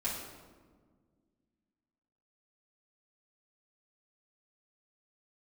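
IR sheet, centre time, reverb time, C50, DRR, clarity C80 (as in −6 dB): 63 ms, 1.6 s, 2.0 dB, −8.5 dB, 4.5 dB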